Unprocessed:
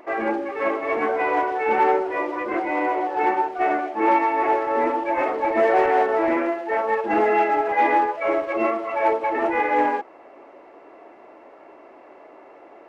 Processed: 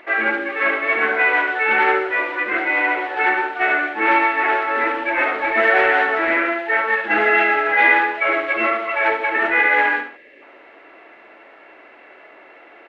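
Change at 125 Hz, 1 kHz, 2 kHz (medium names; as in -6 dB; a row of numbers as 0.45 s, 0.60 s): no reading, 0.0 dB, +13.0 dB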